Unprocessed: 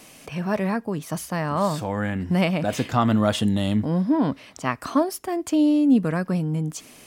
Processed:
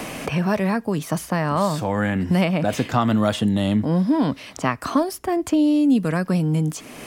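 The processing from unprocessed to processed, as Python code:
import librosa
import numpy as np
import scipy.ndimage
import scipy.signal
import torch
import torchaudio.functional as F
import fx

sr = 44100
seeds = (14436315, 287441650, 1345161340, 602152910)

y = fx.band_squash(x, sr, depth_pct=70)
y = y * librosa.db_to_amplitude(1.5)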